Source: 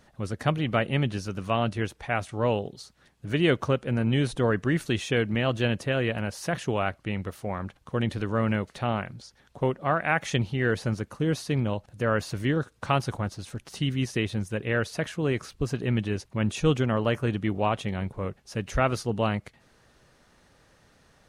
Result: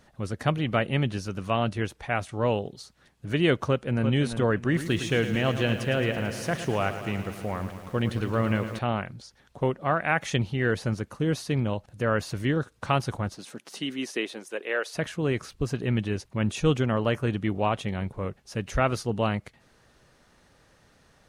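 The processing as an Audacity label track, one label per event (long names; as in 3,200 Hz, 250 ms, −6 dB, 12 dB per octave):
3.690000	4.090000	delay throw 340 ms, feedback 35%, level −8.5 dB
4.610000	8.790000	feedback echo at a low word length 110 ms, feedback 80%, word length 8 bits, level −11 dB
13.350000	14.940000	high-pass filter 170 Hz → 440 Hz 24 dB per octave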